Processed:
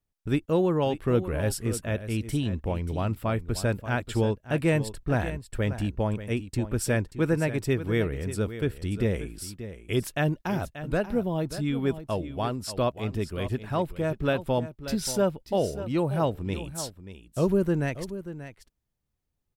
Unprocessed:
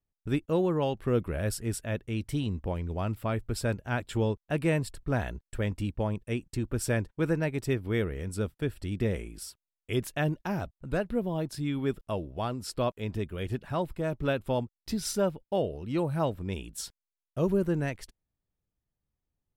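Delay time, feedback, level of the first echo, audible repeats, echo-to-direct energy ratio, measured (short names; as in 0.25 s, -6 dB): 0.584 s, no steady repeat, -12.5 dB, 1, -12.5 dB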